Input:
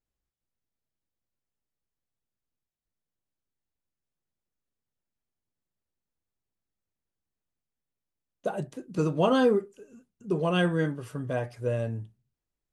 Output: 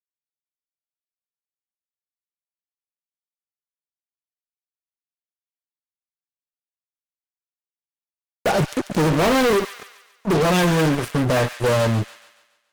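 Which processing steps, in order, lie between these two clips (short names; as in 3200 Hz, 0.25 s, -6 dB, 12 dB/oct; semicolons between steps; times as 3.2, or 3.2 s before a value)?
HPF 110 Hz 12 dB/oct; fuzz box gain 41 dB, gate -42 dBFS; on a send: thin delay 0.141 s, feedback 46%, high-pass 1700 Hz, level -9 dB; on the sum: gain -2.5 dB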